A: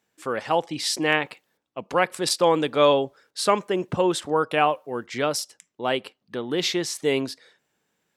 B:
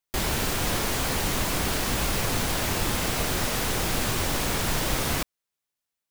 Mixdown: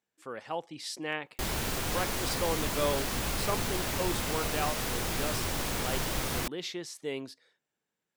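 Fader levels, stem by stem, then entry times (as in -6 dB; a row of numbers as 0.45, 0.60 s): -13.0, -6.0 dB; 0.00, 1.25 s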